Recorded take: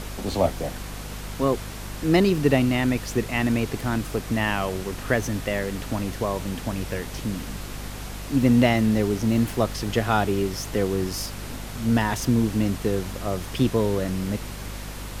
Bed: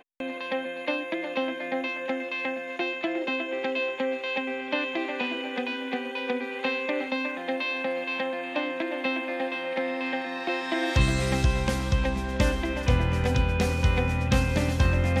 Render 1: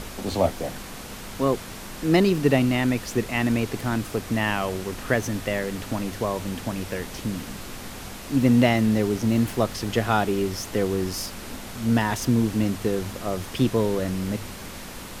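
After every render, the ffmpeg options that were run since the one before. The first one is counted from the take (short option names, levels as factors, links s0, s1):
-af "bandreject=f=50:t=h:w=4,bandreject=f=100:t=h:w=4,bandreject=f=150:t=h:w=4"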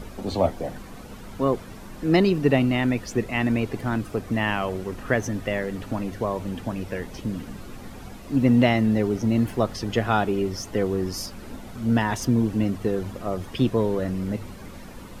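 -af "afftdn=nr=11:nf=-38"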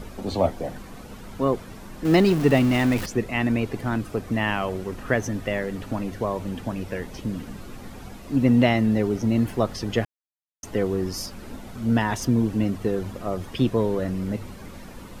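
-filter_complex "[0:a]asettb=1/sr,asplit=3[s0][s1][s2];[s0]atrim=end=2.054[s3];[s1]atrim=start=2.05:end=3.06,asetpts=PTS-STARTPTS,afade=t=in:d=0.004:c=qsin,afade=t=out:st=1.006:d=0.004:c=qsin,aeval=exprs='val(0)+0.5*0.0473*sgn(val(0))':c=same[s4];[s2]atrim=start=3.056[s5];[s3][s4]acrossfade=d=0.004:c1=hsin:c2=qsin[s6];[s6][s5]acrossfade=d=0.004:c1=qsin:c2=hsin,asplit=3[s7][s8][s9];[s7]atrim=end=10.05,asetpts=PTS-STARTPTS,afade=t=out:st=10.046:d=0.004:c=hsin[s10];[s8]atrim=start=10.05:end=10.63,asetpts=PTS-STARTPTS,volume=0[s11];[s9]atrim=start=10.63,asetpts=PTS-STARTPTS,afade=t=in:d=0.004:c=hsin[s12];[s10][s11][s12]concat=n=3:v=0:a=1"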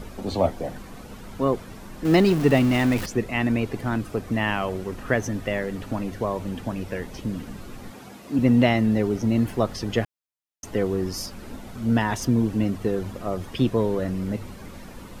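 -filter_complex "[0:a]asettb=1/sr,asplit=3[s0][s1][s2];[s0]atrim=end=7.914[s3];[s1]atrim=start=7.91:end=8.39,asetpts=PTS-STARTPTS,afade=t=in:d=0.004:c=qsin,afade=t=out:st=0.476:d=0.004:c=qsin,highpass=160[s4];[s2]atrim=start=8.386[s5];[s3][s4]acrossfade=d=0.004:c1=hsin:c2=qsin[s6];[s6][s5]acrossfade=d=0.004:c1=qsin:c2=hsin"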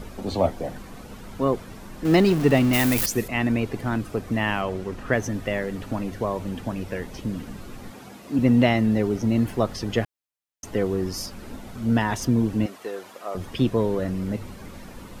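-filter_complex "[0:a]asettb=1/sr,asplit=3[s0][s1][s2];[s0]atrim=end=2.734[s3];[s1]atrim=start=2.73:end=3.28,asetpts=PTS-STARTPTS,afade=t=in:d=0.004:c=qsin,afade=t=out:st=0.546:d=0.004:c=qsin,aemphasis=mode=production:type=75fm[s4];[s2]atrim=start=3.276[s5];[s3][s4]acrossfade=d=0.004:c1=hsin:c2=qsin[s6];[s6][s5]acrossfade=d=0.004:c1=qsin:c2=hsin,asettb=1/sr,asplit=3[s7][s8][s9];[s7]atrim=end=4.614[s10];[s8]atrim=start=4.61:end=5.13,asetpts=PTS-STARTPTS,afade=t=in:d=0.004:c=qsin,afade=t=out:st=0.516:d=0.004:c=qsin,highshelf=f=11000:g=-10.5[s11];[s9]atrim=start=5.126[s12];[s10][s11]acrossfade=d=0.004:c1=hsin:c2=qsin[s13];[s13][s12]acrossfade=d=0.004:c1=qsin:c2=hsin,asettb=1/sr,asplit=3[s14][s15][s16];[s14]atrim=end=12.664[s17];[s15]atrim=start=12.66:end=13.35,asetpts=PTS-STARTPTS,afade=t=in:d=0.004:c=qsin,afade=t=out:st=0.686:d=0.004:c=qsin,highpass=600[s18];[s16]atrim=start=13.346[s19];[s17][s18]acrossfade=d=0.004:c1=hsin:c2=qsin[s20];[s20][s19]acrossfade=d=0.004:c1=qsin:c2=hsin"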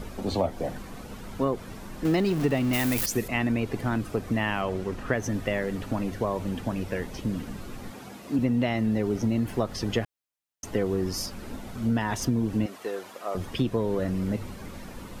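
-af "acompressor=threshold=0.0891:ratio=6"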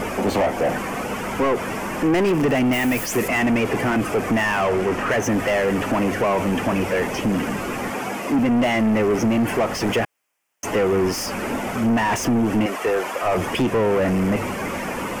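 -filter_complex "[0:a]asplit=2[s0][s1];[s1]highpass=f=720:p=1,volume=31.6,asoftclip=type=tanh:threshold=0.299[s2];[s0][s2]amix=inputs=2:normalize=0,lowpass=f=1300:p=1,volume=0.501,aexciter=amount=1.3:drive=3:freq=2100"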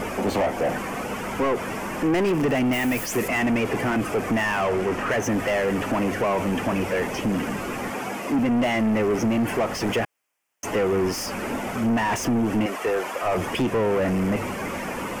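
-af "volume=0.708"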